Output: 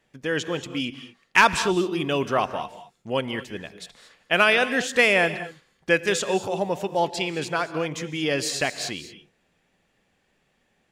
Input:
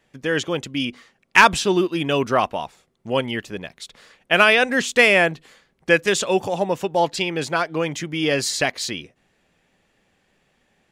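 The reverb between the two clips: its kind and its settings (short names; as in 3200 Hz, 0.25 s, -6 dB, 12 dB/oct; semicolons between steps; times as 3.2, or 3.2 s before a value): non-linear reverb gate 0.25 s rising, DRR 12 dB; gain -4 dB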